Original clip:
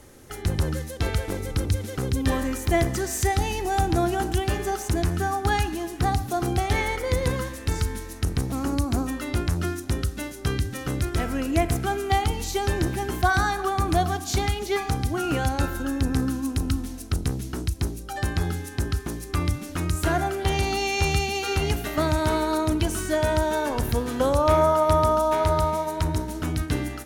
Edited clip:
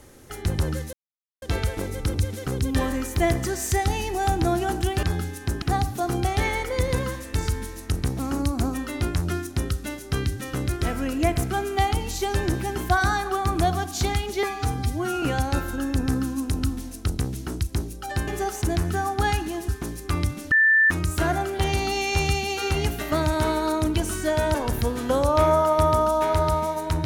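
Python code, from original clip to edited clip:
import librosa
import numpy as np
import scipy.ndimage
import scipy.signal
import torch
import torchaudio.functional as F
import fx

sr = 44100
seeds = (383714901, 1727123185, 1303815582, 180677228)

y = fx.edit(x, sr, fx.insert_silence(at_s=0.93, length_s=0.49),
    fx.swap(start_s=4.54, length_s=1.41, other_s=18.34, other_length_s=0.59),
    fx.stretch_span(start_s=14.76, length_s=0.53, factor=1.5),
    fx.insert_tone(at_s=19.76, length_s=0.39, hz=1770.0, db=-14.0),
    fx.cut(start_s=23.4, length_s=0.25), tone=tone)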